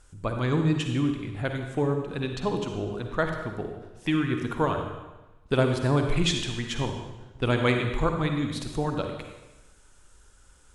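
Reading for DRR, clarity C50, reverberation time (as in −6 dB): 4.0 dB, 4.5 dB, 1.1 s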